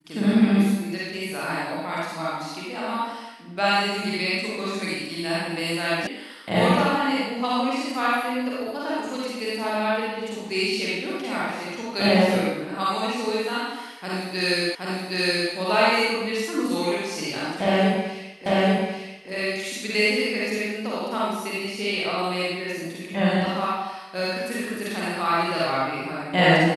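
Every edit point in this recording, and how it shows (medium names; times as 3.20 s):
6.07 s: sound stops dead
14.75 s: repeat of the last 0.77 s
18.46 s: repeat of the last 0.84 s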